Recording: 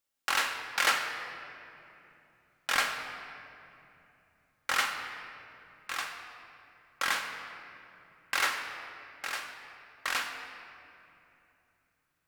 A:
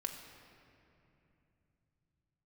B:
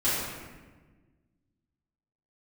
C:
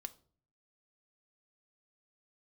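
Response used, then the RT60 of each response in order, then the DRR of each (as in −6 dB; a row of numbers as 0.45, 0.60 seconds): A; 2.9, 1.3, 0.45 seconds; 2.5, −12.0, 9.0 decibels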